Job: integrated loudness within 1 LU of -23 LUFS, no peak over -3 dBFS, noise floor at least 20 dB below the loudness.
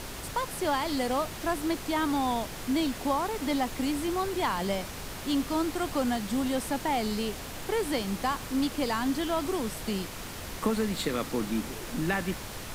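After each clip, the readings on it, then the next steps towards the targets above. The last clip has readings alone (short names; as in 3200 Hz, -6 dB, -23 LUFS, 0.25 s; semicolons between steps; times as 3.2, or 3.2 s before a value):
noise floor -40 dBFS; noise floor target -51 dBFS; loudness -30.5 LUFS; peak -15.0 dBFS; loudness target -23.0 LUFS
-> noise print and reduce 11 dB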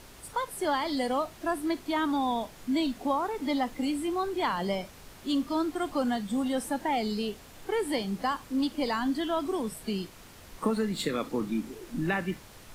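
noise floor -51 dBFS; loudness -30.5 LUFS; peak -15.0 dBFS; loudness target -23.0 LUFS
-> gain +7.5 dB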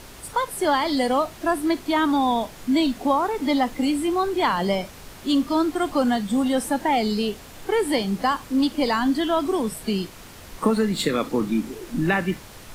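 loudness -23.0 LUFS; peak -7.5 dBFS; noise floor -43 dBFS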